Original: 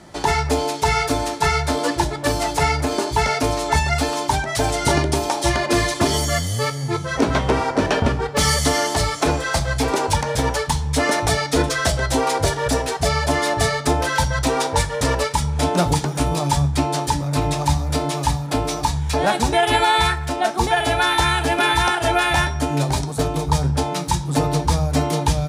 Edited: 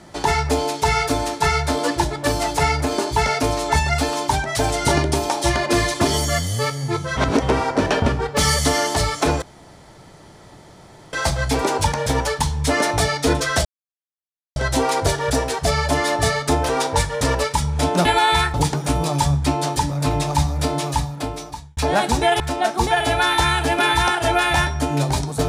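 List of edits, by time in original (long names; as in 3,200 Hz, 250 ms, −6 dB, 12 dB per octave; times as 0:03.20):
0:07.17–0:07.42: reverse
0:09.42: splice in room tone 1.71 s
0:11.94: splice in silence 0.91 s
0:14.07–0:14.49: remove
0:18.13–0:19.08: fade out
0:19.71–0:20.20: move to 0:15.85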